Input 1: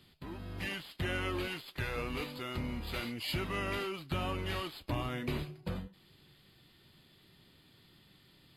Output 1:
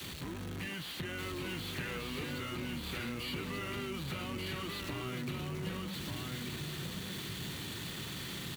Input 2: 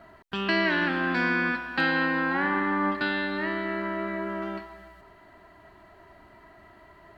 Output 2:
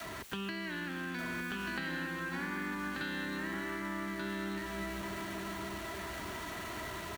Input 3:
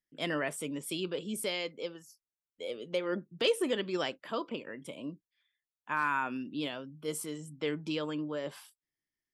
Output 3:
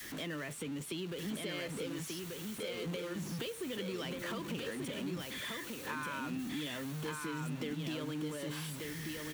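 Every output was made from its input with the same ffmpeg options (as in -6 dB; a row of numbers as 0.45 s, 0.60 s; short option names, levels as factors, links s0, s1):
-filter_complex "[0:a]aeval=exprs='val(0)+0.5*0.0158*sgn(val(0))':c=same,adynamicequalizer=threshold=0.00708:dfrequency=140:dqfactor=0.76:tfrequency=140:tqfactor=0.76:attack=5:release=100:ratio=0.375:range=2.5:mode=boostabove:tftype=bell,highpass=46,acrossover=split=150|2000|4900[s0][s1][s2][s3];[s0]acompressor=threshold=0.00708:ratio=4[s4];[s1]acompressor=threshold=0.0224:ratio=4[s5];[s2]acompressor=threshold=0.0112:ratio=4[s6];[s3]acompressor=threshold=0.00398:ratio=4[s7];[s4][s5][s6][s7]amix=inputs=4:normalize=0,bandreject=f=5000:w=12,acompressor=threshold=0.0126:ratio=3,equalizer=f=690:t=o:w=0.75:g=-5,asplit=2[s8][s9];[s9]aecho=0:1:1185:0.668[s10];[s8][s10]amix=inputs=2:normalize=0"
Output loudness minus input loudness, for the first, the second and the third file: -1.5 LU, -12.0 LU, -4.5 LU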